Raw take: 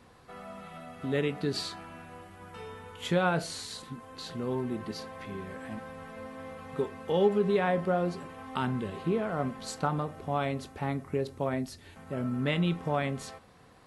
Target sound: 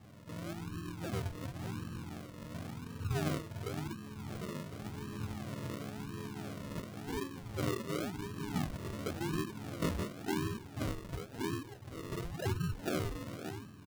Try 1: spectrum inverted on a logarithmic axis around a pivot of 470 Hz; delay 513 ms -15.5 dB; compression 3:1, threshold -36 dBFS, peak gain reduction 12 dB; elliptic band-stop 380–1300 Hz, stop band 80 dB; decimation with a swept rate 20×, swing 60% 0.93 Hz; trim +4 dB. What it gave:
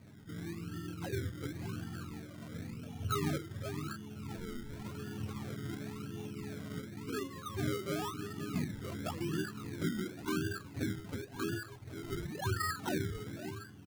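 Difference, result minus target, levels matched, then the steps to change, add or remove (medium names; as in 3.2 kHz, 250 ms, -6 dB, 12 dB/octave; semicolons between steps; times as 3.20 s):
decimation with a swept rate: distortion -5 dB
change: decimation with a swept rate 44×, swing 60% 0.93 Hz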